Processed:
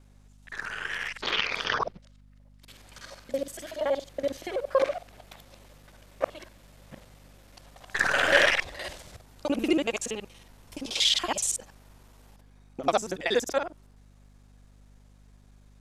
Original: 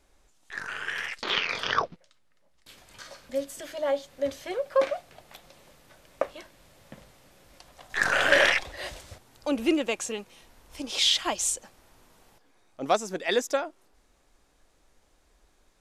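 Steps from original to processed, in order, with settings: time reversed locally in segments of 47 ms; hum 50 Hz, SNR 24 dB

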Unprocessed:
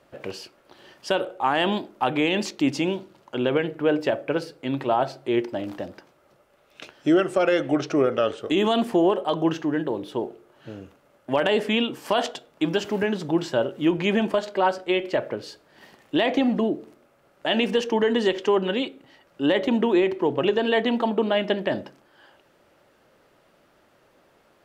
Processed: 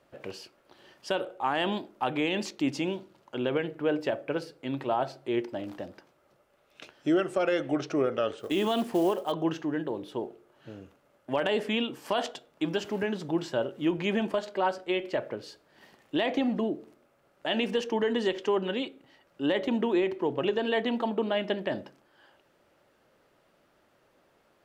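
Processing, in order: 8.39–9.32 s: companded quantiser 6-bit; trim -6 dB

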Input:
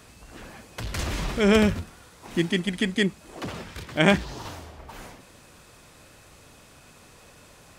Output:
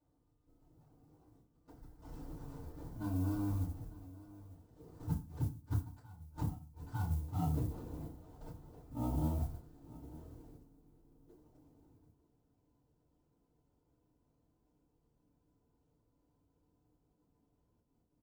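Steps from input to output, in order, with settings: median filter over 9 samples; Doppler pass-by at 2.64 s, 29 m/s, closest 2 m; level held to a coarse grid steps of 10 dB; speed mistake 78 rpm record played at 33 rpm; bass shelf 470 Hz -4.5 dB; delay 901 ms -19 dB; inverted gate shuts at -38 dBFS, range -37 dB; FDN reverb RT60 0.33 s, low-frequency decay 1.35×, high-frequency decay 0.8×, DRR -8.5 dB; modulation noise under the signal 22 dB; peaking EQ 2.2 kHz -15 dB 2.9 oct; trim +9.5 dB

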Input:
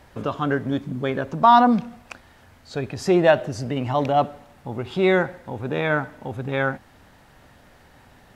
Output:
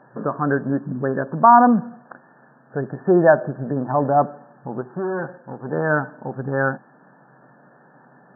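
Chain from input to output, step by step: 4.81–5.73 s: valve stage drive 24 dB, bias 0.65; FFT band-pass 120–1800 Hz; trim +2.5 dB

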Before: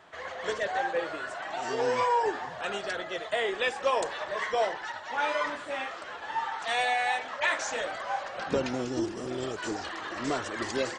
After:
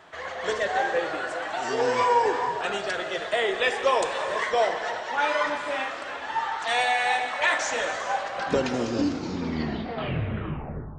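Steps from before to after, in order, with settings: tape stop on the ending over 2.27 s; gated-style reverb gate 480 ms flat, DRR 7 dB; trim +4 dB

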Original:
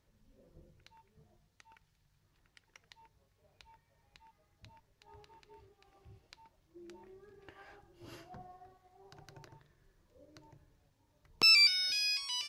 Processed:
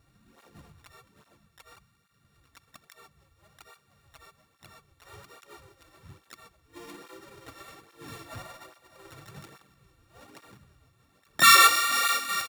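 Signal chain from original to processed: sorted samples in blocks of 32 samples; harmony voices -4 st -13 dB, -3 st -3 dB, +5 st -3 dB; cancelling through-zero flanger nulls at 1.2 Hz, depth 5.6 ms; trim +8 dB

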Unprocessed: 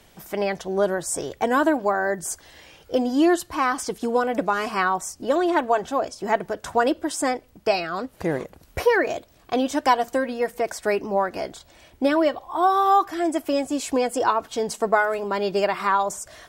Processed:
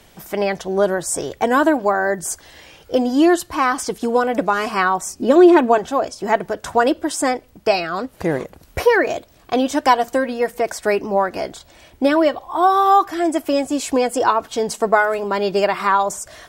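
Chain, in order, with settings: 5.06–5.78 s: small resonant body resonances 240/360/2500 Hz, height 10 dB; trim +4.5 dB

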